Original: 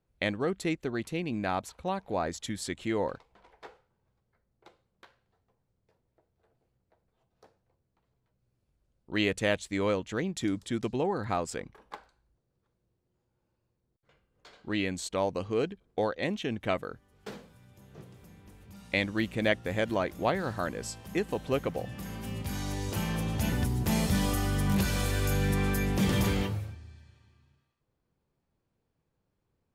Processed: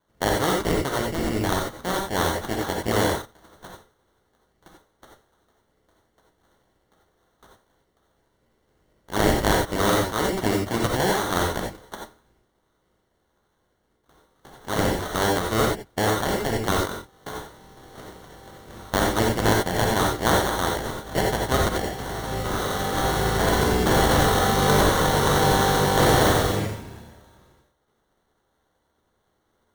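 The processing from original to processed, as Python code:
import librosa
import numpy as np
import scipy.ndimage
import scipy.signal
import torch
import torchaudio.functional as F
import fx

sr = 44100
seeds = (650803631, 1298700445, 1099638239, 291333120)

y = fx.spec_clip(x, sr, under_db=19)
y = fx.sample_hold(y, sr, seeds[0], rate_hz=2500.0, jitter_pct=0)
y = fx.rev_gated(y, sr, seeds[1], gate_ms=110, shape='rising', drr_db=-0.5)
y = F.gain(torch.from_numpy(y), 5.0).numpy()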